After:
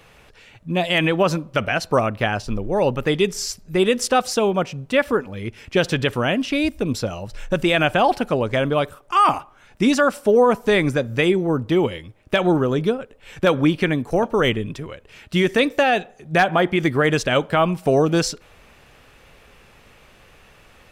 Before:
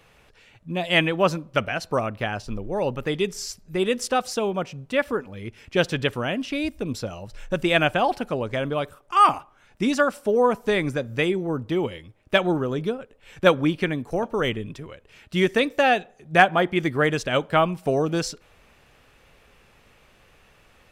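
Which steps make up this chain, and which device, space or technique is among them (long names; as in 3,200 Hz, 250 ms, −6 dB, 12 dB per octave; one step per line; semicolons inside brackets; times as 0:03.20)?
clipper into limiter (hard clipping −6 dBFS, distortion −29 dB; brickwall limiter −13.5 dBFS, peak gain reduction 7.5 dB)
level +6 dB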